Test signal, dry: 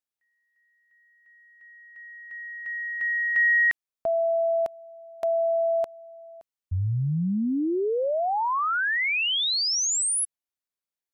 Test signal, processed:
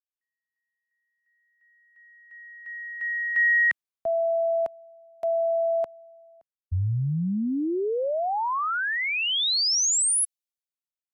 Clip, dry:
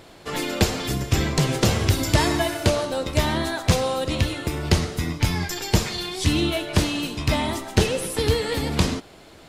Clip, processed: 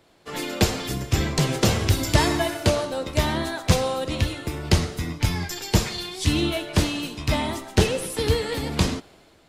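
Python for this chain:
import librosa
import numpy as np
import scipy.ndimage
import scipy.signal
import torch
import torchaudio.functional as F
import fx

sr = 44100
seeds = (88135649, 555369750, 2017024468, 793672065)

y = fx.band_widen(x, sr, depth_pct=40)
y = y * 10.0 ** (-1.0 / 20.0)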